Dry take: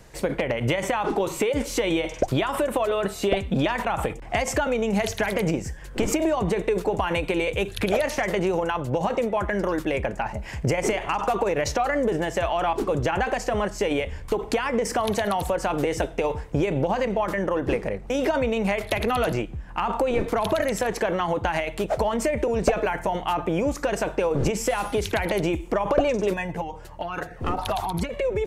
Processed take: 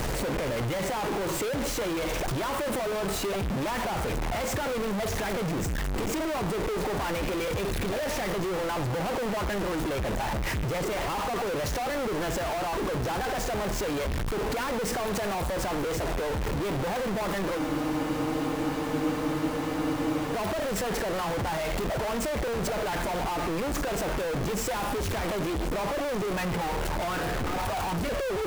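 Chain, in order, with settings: infinite clipping; high shelf 2200 Hz -7.5 dB; transient shaper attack +4 dB, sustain +8 dB; spectral freeze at 17.61, 2.71 s; gain -3.5 dB

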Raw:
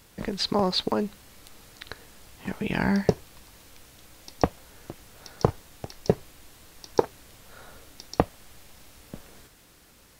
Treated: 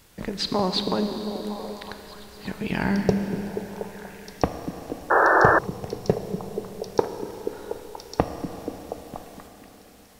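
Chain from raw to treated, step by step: delay with a stepping band-pass 0.24 s, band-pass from 210 Hz, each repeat 0.7 oct, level -3 dB; Schroeder reverb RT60 3.9 s, combs from 26 ms, DRR 7 dB; painted sound noise, 5.1–5.59, 310–1800 Hz -17 dBFS

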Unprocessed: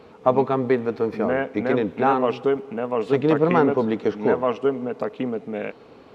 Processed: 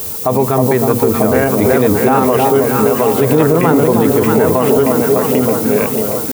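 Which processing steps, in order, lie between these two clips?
notches 60/120/180/240 Hz; added noise violet -34 dBFS; tempo 0.97×; bell 82 Hz +14 dB 1.2 oct; echo with dull and thin repeats by turns 0.313 s, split 960 Hz, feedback 76%, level -5 dB; maximiser +12 dB; gain -1 dB

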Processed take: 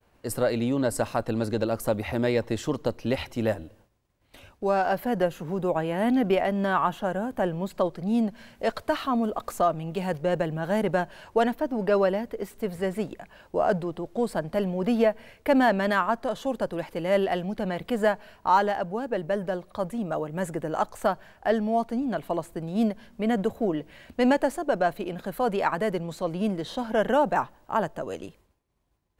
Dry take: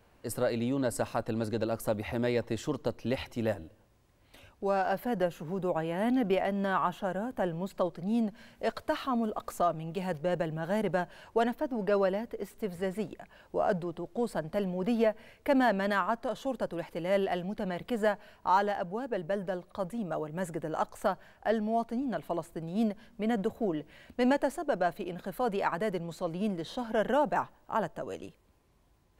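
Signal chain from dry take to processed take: expander -57 dBFS; gain +5 dB

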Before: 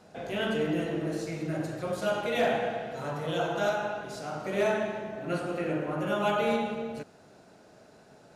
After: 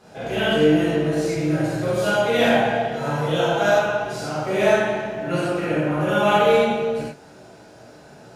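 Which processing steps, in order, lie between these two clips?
non-linear reverb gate 0.13 s flat, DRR -7.5 dB; gain +2 dB

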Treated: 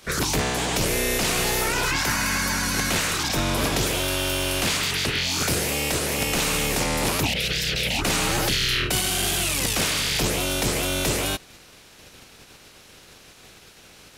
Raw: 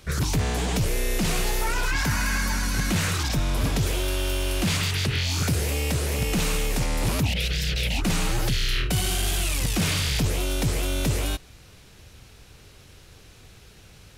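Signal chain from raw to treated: spectral limiter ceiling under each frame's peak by 17 dB

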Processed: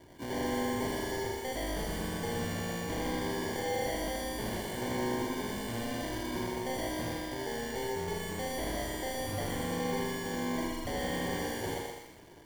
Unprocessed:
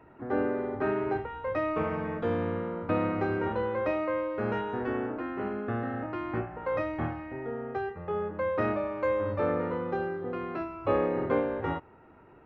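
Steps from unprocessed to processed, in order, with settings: 3.11–3.82 elliptic low-pass 1100 Hz; sample-and-hold 34×; hard clip -35 dBFS, distortion -5 dB; thinning echo 0.122 s, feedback 43%, high-pass 420 Hz, level -3 dB; lo-fi delay 81 ms, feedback 55%, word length 9-bit, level -5 dB

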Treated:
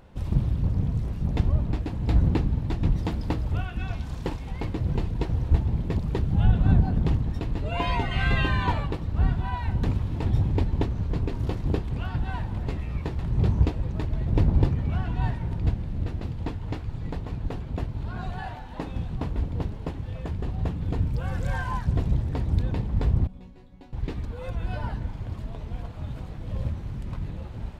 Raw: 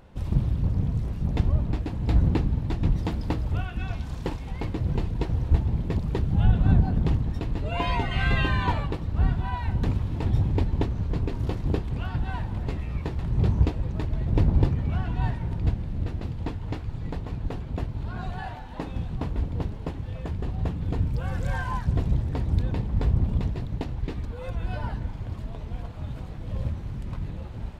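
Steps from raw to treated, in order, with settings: 23.27–23.93 resonator bank F#3 sus4, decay 0.25 s

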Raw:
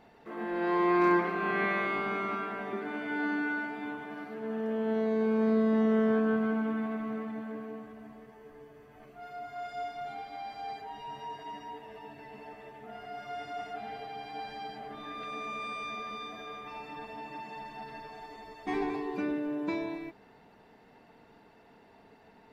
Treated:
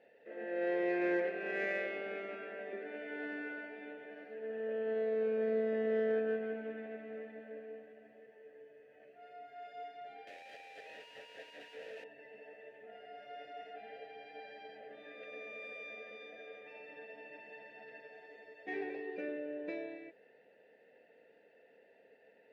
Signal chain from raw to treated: 10.27–12.04 infinite clipping; vowel filter e; added harmonics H 7 -35 dB, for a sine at -30 dBFS; gain +7 dB

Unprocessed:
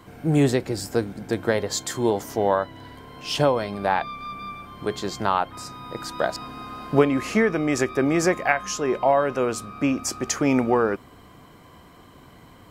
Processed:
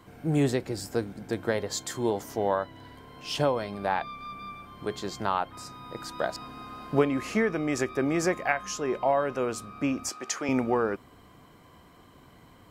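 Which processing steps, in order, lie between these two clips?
10.09–10.49 weighting filter A; gain -5.5 dB

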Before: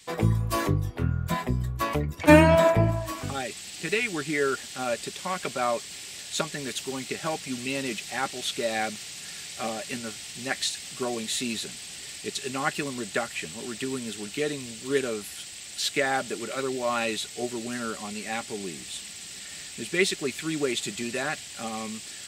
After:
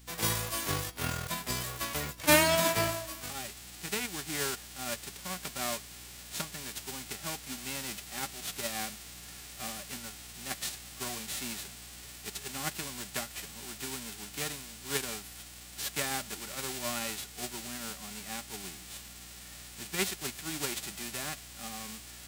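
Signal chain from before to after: spectral whitening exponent 0.3; hum 60 Hz, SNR 19 dB; gain -8 dB

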